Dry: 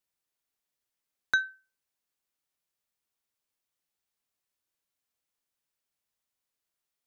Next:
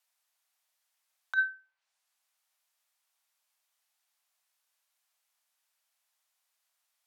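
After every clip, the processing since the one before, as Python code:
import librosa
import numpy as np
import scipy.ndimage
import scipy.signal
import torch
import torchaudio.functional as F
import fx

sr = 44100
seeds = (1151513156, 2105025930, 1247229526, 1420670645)

y = fx.env_lowpass_down(x, sr, base_hz=2400.0, full_db=-42.0)
y = scipy.signal.sosfilt(scipy.signal.butter(6, 630.0, 'highpass', fs=sr, output='sos'), y)
y = fx.over_compress(y, sr, threshold_db=-29.0, ratio=-0.5)
y = y * librosa.db_to_amplitude(4.0)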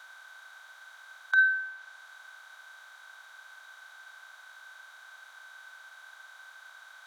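y = fx.bin_compress(x, sr, power=0.4)
y = y * librosa.db_to_amplitude(4.0)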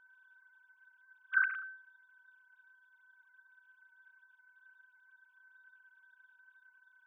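y = fx.sine_speech(x, sr)
y = y * librosa.db_to_amplitude(-8.0)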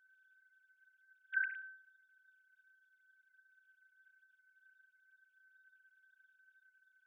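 y = fx.brickwall_highpass(x, sr, low_hz=1500.0)
y = y * librosa.db_to_amplitude(-5.0)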